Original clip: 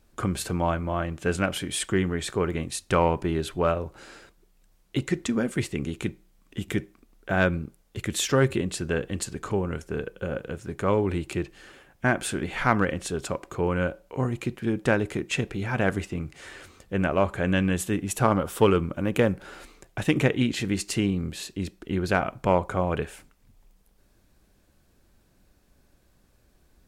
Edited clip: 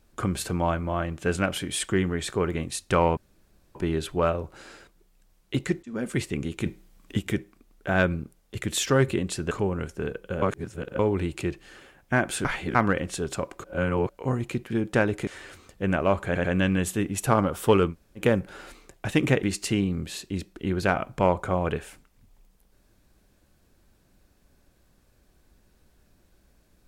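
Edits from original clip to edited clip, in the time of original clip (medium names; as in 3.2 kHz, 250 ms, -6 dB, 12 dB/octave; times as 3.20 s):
3.17 s: insert room tone 0.58 s
5.25–5.53 s: fade in
6.08–6.61 s: gain +5.5 dB
8.93–9.43 s: delete
10.34–10.91 s: reverse
12.37–12.67 s: reverse
13.56–14.01 s: reverse
15.19–16.38 s: delete
17.37 s: stutter 0.09 s, 3 plays
18.84–19.13 s: room tone, crossfade 0.10 s
20.36–20.69 s: delete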